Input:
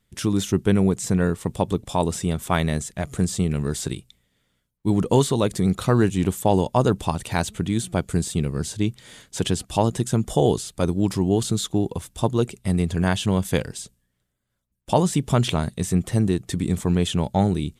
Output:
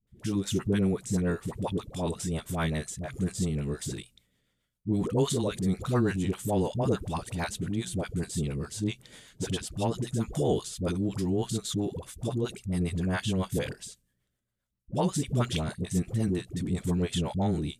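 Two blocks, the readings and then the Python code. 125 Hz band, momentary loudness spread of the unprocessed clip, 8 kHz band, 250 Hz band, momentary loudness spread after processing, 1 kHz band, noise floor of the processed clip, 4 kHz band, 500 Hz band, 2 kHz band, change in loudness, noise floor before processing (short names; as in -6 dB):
-7.5 dB, 7 LU, -7.0 dB, -7.0 dB, 7 LU, -10.5 dB, -78 dBFS, -7.0 dB, -8.0 dB, -6.5 dB, -7.5 dB, -74 dBFS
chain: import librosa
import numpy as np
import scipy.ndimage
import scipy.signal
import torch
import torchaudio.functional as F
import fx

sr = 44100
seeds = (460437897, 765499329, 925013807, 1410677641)

y = fx.dispersion(x, sr, late='highs', ms=73.0, hz=550.0)
y = fx.rotary(y, sr, hz=7.5)
y = fx.transient(y, sr, attack_db=-2, sustain_db=4)
y = y * 10.0 ** (-5.5 / 20.0)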